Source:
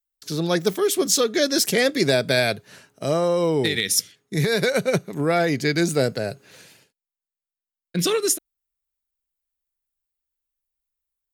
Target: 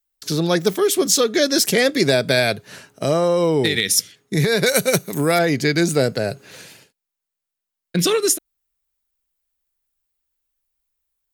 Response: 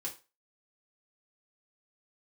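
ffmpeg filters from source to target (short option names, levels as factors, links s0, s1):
-filter_complex "[0:a]asettb=1/sr,asplit=3[s0][s1][s2];[s0]atrim=end=4.664[s3];[s1]atrim=start=4.66:end=5.39,asetpts=PTS-STARTPTS,afade=t=in:d=0.004:c=qsin,afade=t=out:st=0.726:d=0.004:c=qsin,aemphasis=mode=production:type=75fm[s4];[s2]atrim=start=5.386[s5];[s3][s4]acrossfade=d=0.004:c1=hsin:c2=qsin[s6];[s6][s5]acrossfade=d=0.004:c1=qsin:c2=hsin,asplit=2[s7][s8];[s8]acompressor=threshold=0.0447:ratio=6,volume=1.26[s9];[s7][s9]amix=inputs=2:normalize=0"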